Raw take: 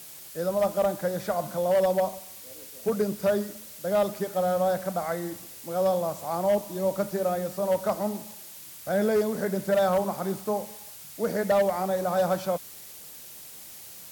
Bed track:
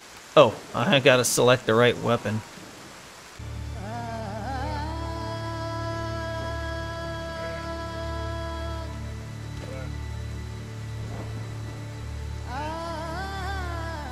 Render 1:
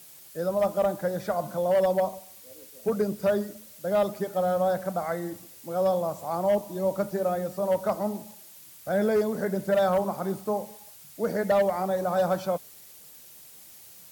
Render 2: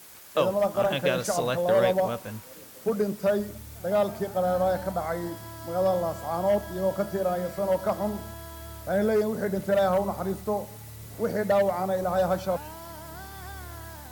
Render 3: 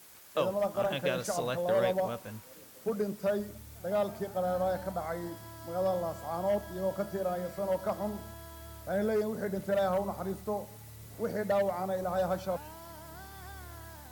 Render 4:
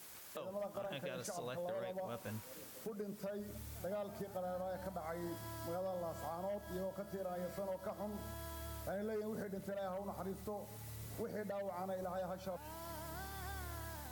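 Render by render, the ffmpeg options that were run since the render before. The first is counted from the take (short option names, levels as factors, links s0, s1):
-af "afftdn=nr=6:nf=-45"
-filter_complex "[1:a]volume=0.316[s0];[0:a][s0]amix=inputs=2:normalize=0"
-af "volume=0.501"
-af "acompressor=threshold=0.0178:ratio=10,alimiter=level_in=2.99:limit=0.0631:level=0:latency=1:release=429,volume=0.335"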